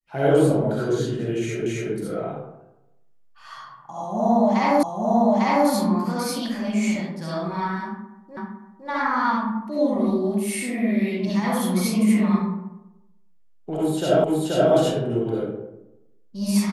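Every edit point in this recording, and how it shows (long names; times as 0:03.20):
0:01.66: the same again, the last 0.27 s
0:04.83: the same again, the last 0.85 s
0:08.37: the same again, the last 0.51 s
0:14.24: the same again, the last 0.48 s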